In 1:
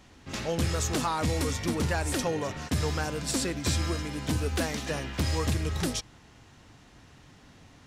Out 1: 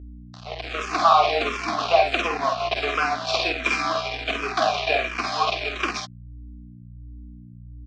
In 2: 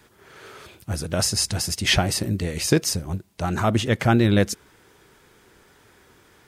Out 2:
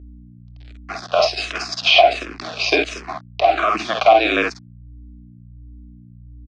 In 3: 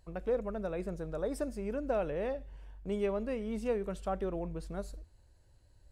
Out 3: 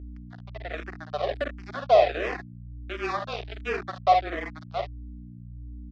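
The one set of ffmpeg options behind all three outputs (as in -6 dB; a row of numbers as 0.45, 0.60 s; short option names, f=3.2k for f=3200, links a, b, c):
-filter_complex "[0:a]asplit=3[a][b][c];[a]bandpass=f=730:t=q:w=8,volume=0dB[d];[b]bandpass=f=1.09k:t=q:w=8,volume=-6dB[e];[c]bandpass=f=2.44k:t=q:w=8,volume=-9dB[f];[d][e][f]amix=inputs=3:normalize=0,asplit=2[g][h];[h]acompressor=threshold=-47dB:ratio=16,volume=-1dB[i];[g][i]amix=inputs=2:normalize=0,tiltshelf=f=970:g=-5.5,aecho=1:1:49|65:0.596|0.376,dynaudnorm=f=200:g=7:m=13dB,aeval=exprs='sgn(val(0))*max(abs(val(0))-0.0178,0)':c=same,highpass=f=290:w=0.5412,highpass=f=290:w=1.3066,equalizer=f=550:t=q:w=4:g=-9,equalizer=f=960:t=q:w=4:g=-6,equalizer=f=2.7k:t=q:w=4:g=-4,lowpass=f=5.1k:w=0.5412,lowpass=f=5.1k:w=1.3066,afreqshift=-27,aeval=exprs='val(0)+0.00316*(sin(2*PI*60*n/s)+sin(2*PI*2*60*n/s)/2+sin(2*PI*3*60*n/s)/3+sin(2*PI*4*60*n/s)/4+sin(2*PI*5*60*n/s)/5)':c=same,alimiter=level_in=13.5dB:limit=-1dB:release=50:level=0:latency=1,asplit=2[j][k];[k]afreqshift=-1.4[l];[j][l]amix=inputs=2:normalize=1"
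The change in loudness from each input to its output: +7.0, +5.0, +8.5 LU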